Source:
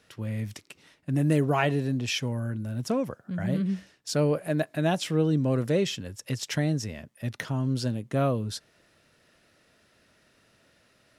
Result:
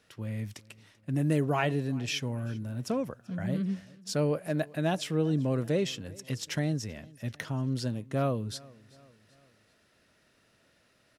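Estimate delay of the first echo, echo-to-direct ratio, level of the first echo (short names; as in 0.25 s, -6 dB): 0.387 s, -22.5 dB, -23.5 dB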